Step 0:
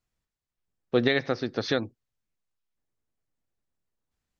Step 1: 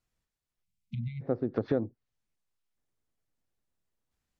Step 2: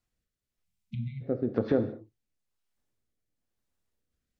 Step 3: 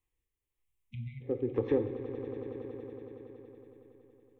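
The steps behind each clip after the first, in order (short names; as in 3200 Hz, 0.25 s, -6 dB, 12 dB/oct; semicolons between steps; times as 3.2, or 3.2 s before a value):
treble ducked by the level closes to 590 Hz, closed at -25 dBFS; spectral delete 0.63–1.21, 220–2000 Hz
rotary speaker horn 1 Hz; non-linear reverb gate 0.24 s falling, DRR 8 dB; gain +2.5 dB
fixed phaser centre 960 Hz, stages 8; on a send: swelling echo 93 ms, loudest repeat 5, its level -15 dB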